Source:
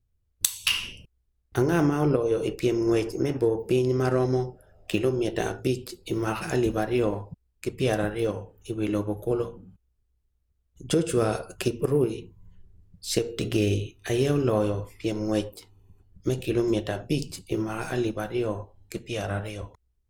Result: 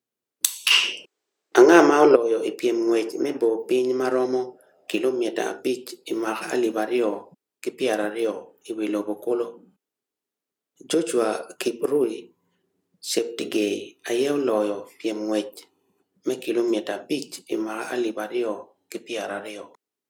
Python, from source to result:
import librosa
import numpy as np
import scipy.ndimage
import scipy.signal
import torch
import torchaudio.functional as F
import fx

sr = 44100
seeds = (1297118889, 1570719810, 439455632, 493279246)

y = fx.spec_box(x, sr, start_s=0.71, length_s=1.44, low_hz=310.0, high_hz=8600.0, gain_db=10)
y = scipy.signal.sosfilt(scipy.signal.butter(4, 250.0, 'highpass', fs=sr, output='sos'), y)
y = F.gain(torch.from_numpy(y), 2.5).numpy()